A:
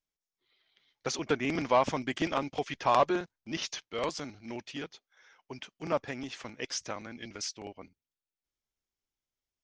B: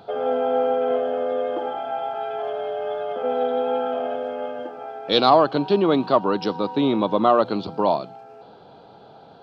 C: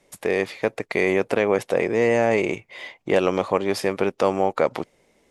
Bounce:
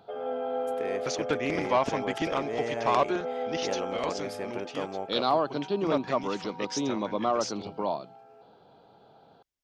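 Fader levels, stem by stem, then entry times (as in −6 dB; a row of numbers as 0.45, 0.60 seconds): 0.0, −10.0, −14.5 decibels; 0.00, 0.00, 0.55 seconds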